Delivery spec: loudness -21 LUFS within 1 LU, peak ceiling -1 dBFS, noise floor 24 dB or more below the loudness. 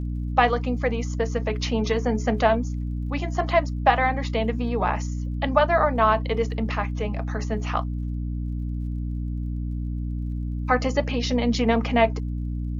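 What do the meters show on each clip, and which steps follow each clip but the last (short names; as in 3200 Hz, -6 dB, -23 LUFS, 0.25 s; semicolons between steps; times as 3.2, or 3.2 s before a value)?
ticks 41/s; hum 60 Hz; harmonics up to 300 Hz; hum level -25 dBFS; loudness -24.5 LUFS; peak -3.5 dBFS; loudness target -21.0 LUFS
-> de-click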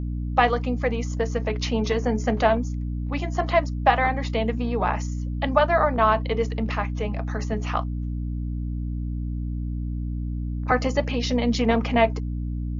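ticks 0/s; hum 60 Hz; harmonics up to 300 Hz; hum level -25 dBFS
-> notches 60/120/180/240/300 Hz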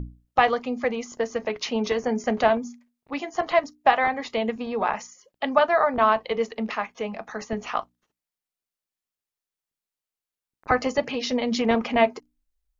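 hum none; loudness -24.5 LUFS; peak -3.5 dBFS; loudness target -21.0 LUFS
-> gain +3.5 dB; limiter -1 dBFS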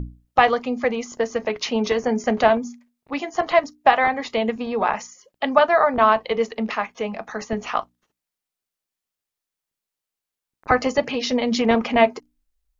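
loudness -21.5 LUFS; peak -1.0 dBFS; noise floor -86 dBFS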